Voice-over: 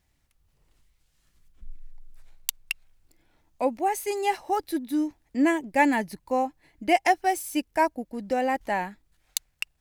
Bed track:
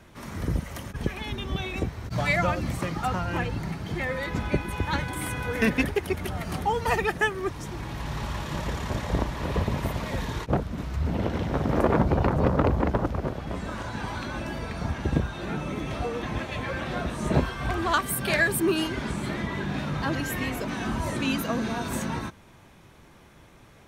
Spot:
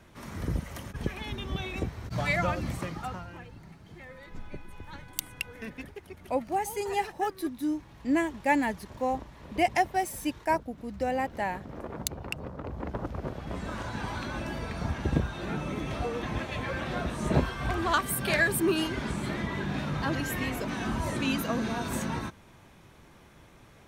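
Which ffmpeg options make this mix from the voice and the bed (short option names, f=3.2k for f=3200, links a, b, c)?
-filter_complex "[0:a]adelay=2700,volume=-4dB[a];[1:a]volume=12dB,afade=t=out:st=2.68:d=0.69:silence=0.199526,afade=t=in:st=12.62:d=1.12:silence=0.16788[b];[a][b]amix=inputs=2:normalize=0"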